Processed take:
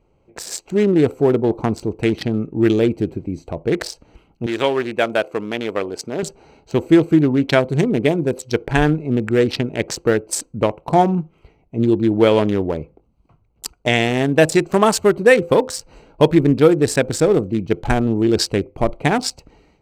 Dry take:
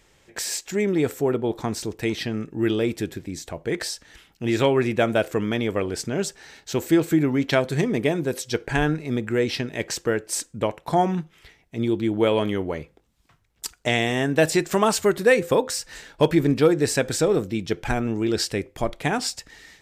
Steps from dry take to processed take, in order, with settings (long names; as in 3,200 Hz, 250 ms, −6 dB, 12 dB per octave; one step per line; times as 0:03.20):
adaptive Wiener filter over 25 samples
automatic gain control gain up to 7 dB
0:04.46–0:06.23: high-pass filter 590 Hz 6 dB per octave
level +1 dB